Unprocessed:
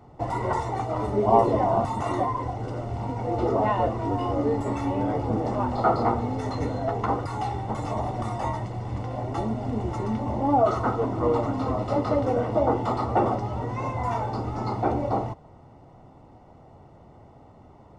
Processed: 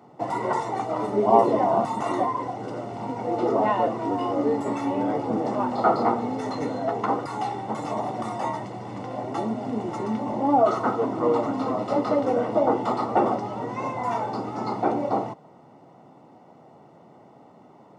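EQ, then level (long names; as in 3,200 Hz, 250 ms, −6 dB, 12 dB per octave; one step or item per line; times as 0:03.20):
high-pass filter 160 Hz 24 dB per octave
+1.5 dB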